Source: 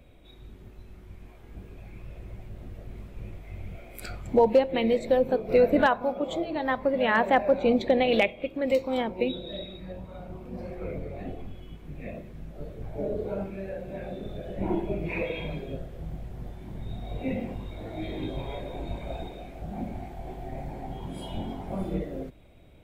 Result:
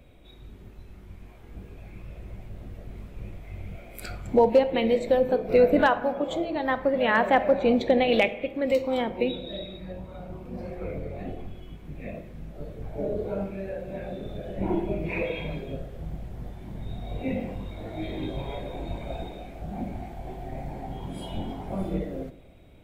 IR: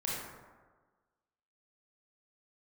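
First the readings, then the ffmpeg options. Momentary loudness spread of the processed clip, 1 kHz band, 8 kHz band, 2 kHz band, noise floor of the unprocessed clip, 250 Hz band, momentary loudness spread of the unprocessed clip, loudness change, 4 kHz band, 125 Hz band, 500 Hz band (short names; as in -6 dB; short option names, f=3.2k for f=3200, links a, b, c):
21 LU, +1.0 dB, n/a, +1.0 dB, -49 dBFS, +1.0 dB, 21 LU, +1.0 dB, +1.0 dB, +1.0 dB, +1.5 dB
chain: -filter_complex "[0:a]asplit=2[a][b];[1:a]atrim=start_sample=2205,asetrate=61740,aresample=44100[c];[b][c]afir=irnorm=-1:irlink=0,volume=-13dB[d];[a][d]amix=inputs=2:normalize=0"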